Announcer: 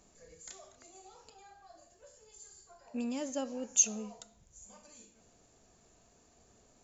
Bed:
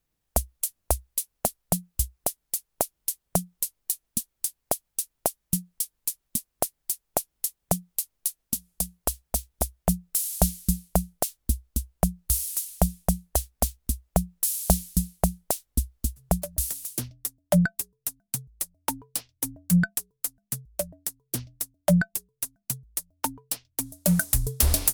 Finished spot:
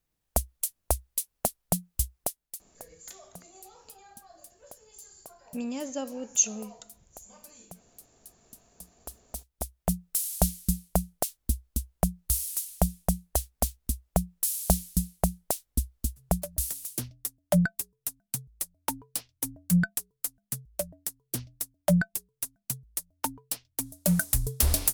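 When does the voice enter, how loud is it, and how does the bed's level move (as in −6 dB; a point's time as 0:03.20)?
2.60 s, +2.5 dB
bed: 0:02.21 −2 dB
0:02.90 −23 dB
0:08.55 −23 dB
0:09.99 −2.5 dB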